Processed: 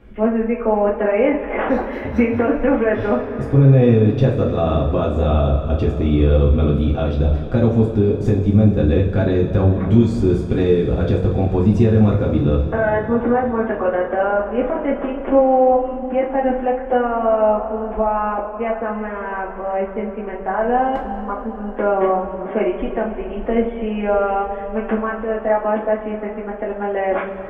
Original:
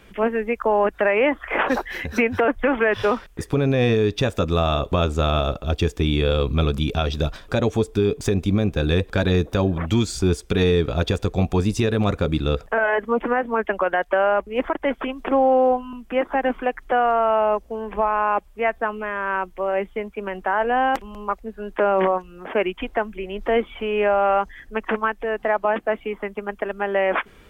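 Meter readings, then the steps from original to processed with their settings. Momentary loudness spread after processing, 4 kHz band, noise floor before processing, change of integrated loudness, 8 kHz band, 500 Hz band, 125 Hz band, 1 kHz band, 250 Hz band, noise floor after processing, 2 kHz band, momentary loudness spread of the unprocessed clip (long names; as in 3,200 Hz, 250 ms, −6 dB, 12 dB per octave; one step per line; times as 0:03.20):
9 LU, can't be measured, −49 dBFS, +3.5 dB, below −10 dB, +3.5 dB, +7.0 dB, +1.0 dB, +6.5 dB, −29 dBFS, −4.0 dB, 8 LU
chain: drawn EQ curve 150 Hz 0 dB, 510 Hz −4 dB, 8,200 Hz −24 dB
coupled-rooms reverb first 0.33 s, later 4.5 s, from −18 dB, DRR −4.5 dB
level +3 dB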